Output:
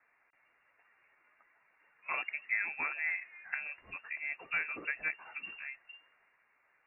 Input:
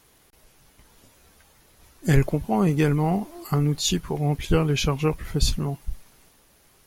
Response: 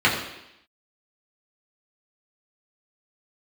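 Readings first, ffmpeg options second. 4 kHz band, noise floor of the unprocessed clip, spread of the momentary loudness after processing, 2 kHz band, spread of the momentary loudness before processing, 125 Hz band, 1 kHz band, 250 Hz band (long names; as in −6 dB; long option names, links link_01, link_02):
below −20 dB, −59 dBFS, 12 LU, +2.0 dB, 8 LU, below −40 dB, −14.5 dB, −35.5 dB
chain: -filter_complex "[0:a]acrossover=split=520 2100:gain=0.0891 1 0.178[link_01][link_02][link_03];[link_01][link_02][link_03]amix=inputs=3:normalize=0,lowpass=frequency=2400:width_type=q:width=0.5098,lowpass=frequency=2400:width_type=q:width=0.6013,lowpass=frequency=2400:width_type=q:width=0.9,lowpass=frequency=2400:width_type=q:width=2.563,afreqshift=-2800,volume=-4.5dB"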